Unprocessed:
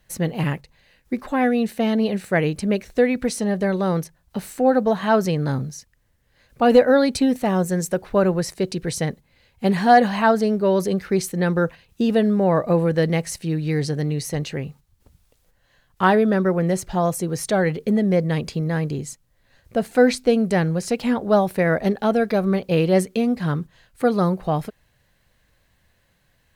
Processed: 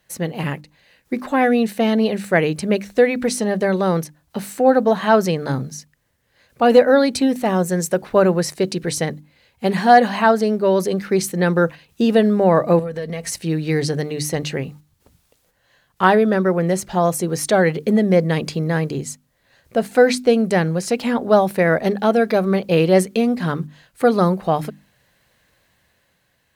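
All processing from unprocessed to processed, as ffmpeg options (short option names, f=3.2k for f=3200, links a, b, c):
-filter_complex "[0:a]asettb=1/sr,asplit=3[a][b][c];[a]atrim=end=12.794[d];[b]atrim=start=12.79:end=13.33,asetpts=PTS-STARTPTS,afade=t=in:d=0.004:c=qsin,afade=t=out:st=0.536:d=0.004:c=qsin,aecho=1:1:4.4:0.63,atrim=end_sample=23814,acompressor=threshold=-26dB:ratio=16:attack=3.2:release=140:knee=1:detection=peak,aeval=exprs='val(0)+0.00316*(sin(2*PI*60*n/s)+sin(2*PI*2*60*n/s)/2+sin(2*PI*3*60*n/s)/3+sin(2*PI*4*60*n/s)/4+sin(2*PI*5*60*n/s)/5)':c=same[e];[c]atrim=start=13.326[f];[d][e]acrossfade=d=0.004:c1=hsin:c2=qsin[g];[g][f]acrossfade=d=0.004:c1=qsin:c2=hsin,highpass=f=150:p=1,bandreject=f=50:t=h:w=6,bandreject=f=100:t=h:w=6,bandreject=f=150:t=h:w=6,bandreject=f=200:t=h:w=6,bandreject=f=250:t=h:w=6,bandreject=f=300:t=h:w=6,dynaudnorm=f=200:g=9:m=4.5dB,volume=1dB"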